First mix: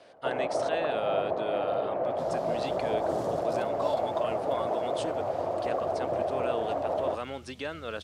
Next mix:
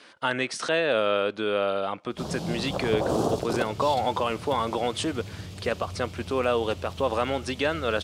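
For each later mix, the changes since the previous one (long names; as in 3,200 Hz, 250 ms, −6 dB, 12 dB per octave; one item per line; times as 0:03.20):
speech +10.0 dB
first sound: muted
second sound +11.5 dB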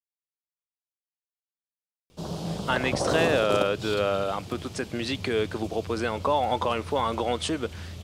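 speech: entry +2.45 s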